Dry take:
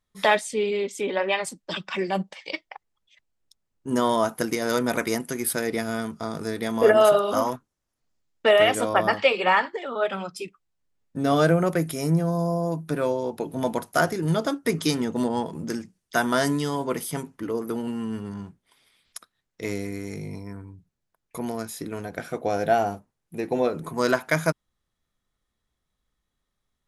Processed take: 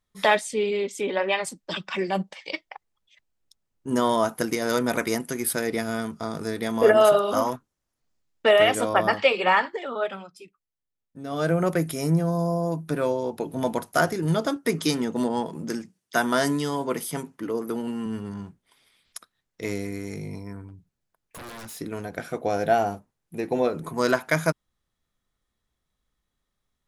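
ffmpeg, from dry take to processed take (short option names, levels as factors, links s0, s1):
-filter_complex "[0:a]asettb=1/sr,asplit=3[s0][s1][s2];[s0]atrim=end=14.564[s3];[s1]atrim=start=14.56:end=18.06,asetpts=PTS-STARTPTS,afade=t=in:d=0.004:c=qsin,afade=t=out:st=3.496:d=0.004:c=qsin,highpass=130[s4];[s2]atrim=start=18.056[s5];[s3][s4]acrossfade=d=0.004:c1=hsin:c2=qsin[s6];[s6][s5]acrossfade=d=0.004:c1=qsin:c2=hsin,asettb=1/sr,asplit=3[s7][s8][s9];[s7]atrim=end=20.684[s10];[s8]atrim=start=20.68:end=21.78,asetpts=PTS-STARTPTS,afade=t=in:d=0.004:c=qsin,afade=t=out:st=1.096:d=0.004:c=qsin,aeval=exprs='0.0178*(abs(mod(val(0)/0.0178+3,4)-2)-1)':c=same[s11];[s9]atrim=start=21.776[s12];[s10][s11]acrossfade=d=0.004:c1=hsin:c2=qsin[s13];[s13][s12]acrossfade=d=0.004:c1=qsin:c2=hsin,asplit=3[s14][s15][s16];[s14]atrim=end=10.28,asetpts=PTS-STARTPTS,afade=t=out:st=9.91:d=0.37:silence=0.251189[s17];[s15]atrim=start=10.28:end=11.3,asetpts=PTS-STARTPTS,volume=0.251[s18];[s16]atrim=start=11.3,asetpts=PTS-STARTPTS,afade=t=in:d=0.37:silence=0.251189[s19];[s17][s18][s19]concat=n=3:v=0:a=1"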